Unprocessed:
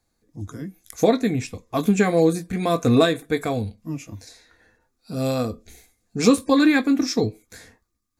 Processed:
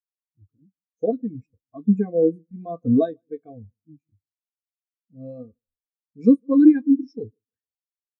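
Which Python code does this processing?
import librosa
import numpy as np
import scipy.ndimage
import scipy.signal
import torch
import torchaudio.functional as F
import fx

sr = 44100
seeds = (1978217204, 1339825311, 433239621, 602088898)

y = fx.echo_feedback(x, sr, ms=153, feedback_pct=36, wet_db=-20.0)
y = fx.spectral_expand(y, sr, expansion=2.5)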